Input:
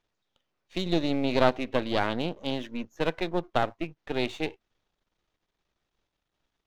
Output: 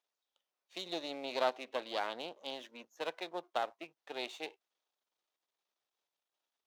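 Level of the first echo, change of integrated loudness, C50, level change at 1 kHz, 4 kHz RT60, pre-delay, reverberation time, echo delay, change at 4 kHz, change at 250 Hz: no echo, -10.5 dB, no reverb, -8.0 dB, no reverb, no reverb, no reverb, no echo, -7.0 dB, -19.0 dB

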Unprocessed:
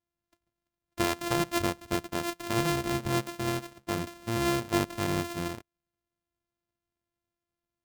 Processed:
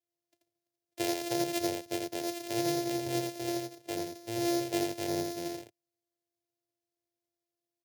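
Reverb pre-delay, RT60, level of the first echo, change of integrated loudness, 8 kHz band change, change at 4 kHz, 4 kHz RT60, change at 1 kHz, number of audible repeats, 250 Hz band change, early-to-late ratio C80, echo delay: no reverb, no reverb, -4.0 dB, -3.0 dB, -0.5 dB, -2.5 dB, no reverb, -5.5 dB, 1, -2.0 dB, no reverb, 84 ms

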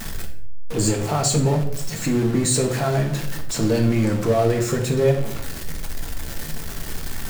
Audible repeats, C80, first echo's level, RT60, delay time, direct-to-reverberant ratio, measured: no echo, 12.0 dB, no echo, 0.70 s, no echo, 2.0 dB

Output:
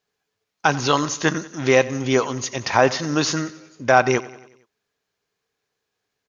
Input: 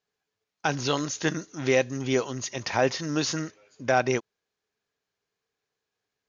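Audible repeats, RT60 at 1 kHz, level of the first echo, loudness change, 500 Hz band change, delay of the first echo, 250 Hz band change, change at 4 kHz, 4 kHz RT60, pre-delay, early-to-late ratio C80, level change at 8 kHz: 4, no reverb, -18.5 dB, +7.0 dB, +6.5 dB, 92 ms, +6.0 dB, +6.0 dB, no reverb, no reverb, no reverb, no reading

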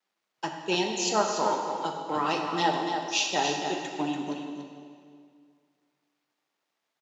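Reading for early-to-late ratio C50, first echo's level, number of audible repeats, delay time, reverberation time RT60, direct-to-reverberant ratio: 2.0 dB, -7.0 dB, 1, 287 ms, 2.1 s, 0.5 dB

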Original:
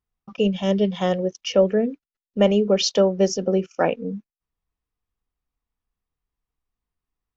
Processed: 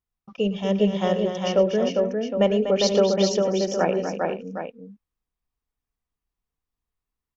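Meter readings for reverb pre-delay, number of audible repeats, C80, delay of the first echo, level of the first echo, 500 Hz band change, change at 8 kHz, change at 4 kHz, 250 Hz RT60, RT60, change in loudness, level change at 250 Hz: no reverb, 5, no reverb, 109 ms, -16.0 dB, 0.0 dB, no reading, -1.5 dB, no reverb, no reverb, -1.5 dB, -1.5 dB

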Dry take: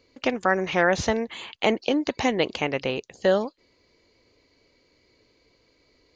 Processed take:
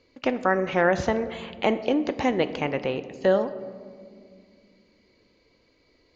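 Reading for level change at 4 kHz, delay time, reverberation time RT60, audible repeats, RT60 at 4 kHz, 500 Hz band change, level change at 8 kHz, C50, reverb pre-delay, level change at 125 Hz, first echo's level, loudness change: -5.5 dB, no echo, 2.1 s, no echo, 0.95 s, +0.5 dB, no reading, 13.5 dB, 4 ms, +0.5 dB, no echo, -0.5 dB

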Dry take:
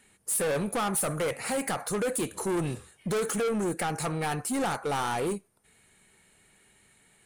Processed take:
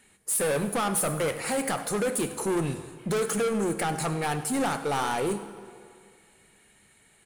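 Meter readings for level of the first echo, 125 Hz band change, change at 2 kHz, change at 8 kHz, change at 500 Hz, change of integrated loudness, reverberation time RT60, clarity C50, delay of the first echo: -17.5 dB, +1.5 dB, +2.0 dB, +2.0 dB, +2.0 dB, +2.0 dB, 2.1 s, 11.0 dB, 99 ms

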